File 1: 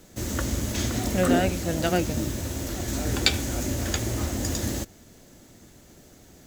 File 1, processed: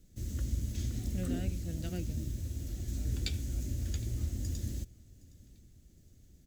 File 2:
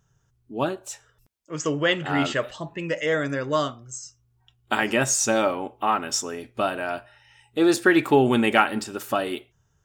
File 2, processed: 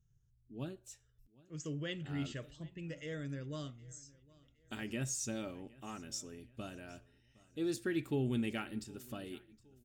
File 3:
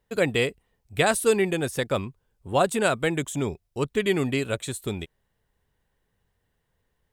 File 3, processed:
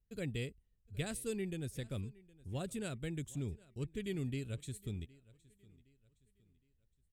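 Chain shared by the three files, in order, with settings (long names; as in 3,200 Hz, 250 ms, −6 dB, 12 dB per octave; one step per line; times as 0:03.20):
guitar amp tone stack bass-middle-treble 10-0-1
on a send: repeating echo 765 ms, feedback 38%, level −23 dB
on the sum: level +4.5 dB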